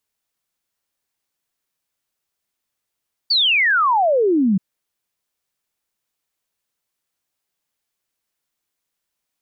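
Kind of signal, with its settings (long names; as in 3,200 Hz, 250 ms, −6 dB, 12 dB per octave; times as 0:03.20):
exponential sine sweep 4,700 Hz → 180 Hz 1.28 s −13 dBFS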